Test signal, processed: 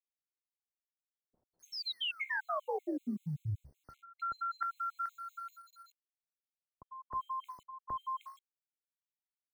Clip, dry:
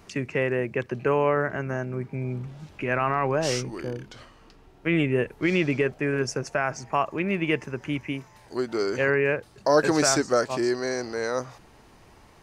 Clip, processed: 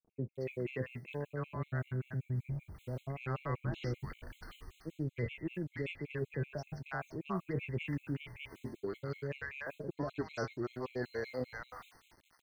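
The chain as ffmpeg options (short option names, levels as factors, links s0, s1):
-filter_complex "[0:a]flanger=delay=8.7:depth=9.3:regen=70:speed=0.19:shape=triangular,acrossover=split=110|820[s0][s1][s2];[s0]dynaudnorm=f=130:g=17:m=3.55[s3];[s3][s1][s2]amix=inputs=3:normalize=0,lowpass=f=3800:w=0.5412,lowpass=f=3800:w=1.3066,agate=range=0.0224:threshold=0.00398:ratio=3:detection=peak,aeval=exprs='0.251*(cos(1*acos(clip(val(0)/0.251,-1,1)))-cos(1*PI/2))+0.00708*(cos(7*acos(clip(val(0)/0.251,-1,1)))-cos(7*PI/2))':c=same,adynamicequalizer=threshold=0.00794:dfrequency=140:dqfactor=2.2:tfrequency=140:tqfactor=2.2:attack=5:release=100:ratio=0.375:range=2:mode=boostabove:tftype=bell,acrusher=bits=10:mix=0:aa=0.000001,areverse,acompressor=threshold=0.0141:ratio=16,areverse,acrossover=split=770[s4][s5];[s5]adelay=310[s6];[s4][s6]amix=inputs=2:normalize=0,afftfilt=real='re*gt(sin(2*PI*5.2*pts/sr)*(1-2*mod(floor(b*sr/1024/2100),2)),0)':imag='im*gt(sin(2*PI*5.2*pts/sr)*(1-2*mod(floor(b*sr/1024/2100),2)),0)':win_size=1024:overlap=0.75,volume=1.88"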